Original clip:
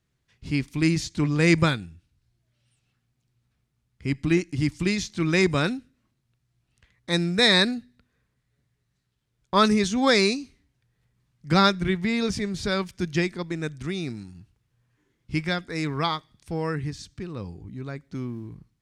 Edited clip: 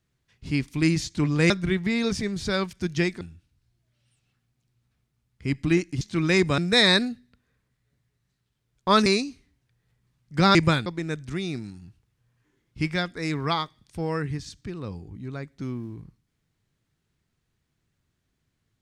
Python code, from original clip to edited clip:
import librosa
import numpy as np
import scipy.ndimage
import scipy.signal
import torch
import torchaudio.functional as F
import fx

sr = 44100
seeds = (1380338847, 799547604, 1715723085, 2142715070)

y = fx.edit(x, sr, fx.swap(start_s=1.5, length_s=0.31, other_s=11.68, other_length_s=1.71),
    fx.cut(start_s=4.61, length_s=0.44),
    fx.cut(start_s=5.62, length_s=1.62),
    fx.cut(start_s=9.72, length_s=0.47), tone=tone)